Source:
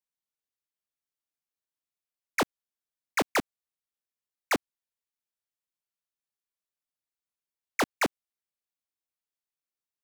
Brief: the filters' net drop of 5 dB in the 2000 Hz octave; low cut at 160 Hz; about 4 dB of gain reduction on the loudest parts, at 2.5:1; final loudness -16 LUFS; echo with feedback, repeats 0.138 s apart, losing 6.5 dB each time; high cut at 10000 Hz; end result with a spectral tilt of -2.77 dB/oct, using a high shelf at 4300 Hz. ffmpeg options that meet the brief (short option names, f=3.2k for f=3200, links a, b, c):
-af "highpass=160,lowpass=10k,equalizer=f=2k:t=o:g=-5,highshelf=f=4.3k:g=-6.5,acompressor=threshold=-30dB:ratio=2.5,aecho=1:1:138|276|414|552|690|828:0.473|0.222|0.105|0.0491|0.0231|0.0109,volume=21dB"